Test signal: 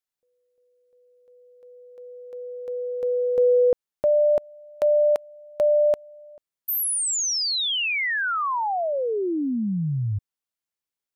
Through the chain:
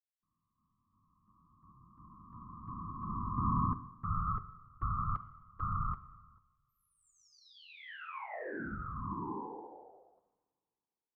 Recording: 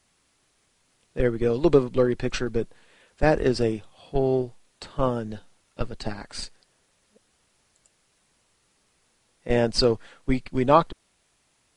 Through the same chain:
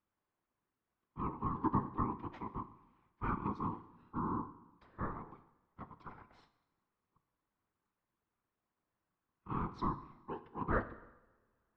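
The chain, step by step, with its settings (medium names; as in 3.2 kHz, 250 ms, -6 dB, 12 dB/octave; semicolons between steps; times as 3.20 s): ladder high-pass 260 Hz, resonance 25%; ring modulator 630 Hz; whisper effect; low-pass 1.3 kHz 12 dB/octave; two-slope reverb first 0.95 s, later 2.7 s, from -23 dB, DRR 11 dB; trim -6.5 dB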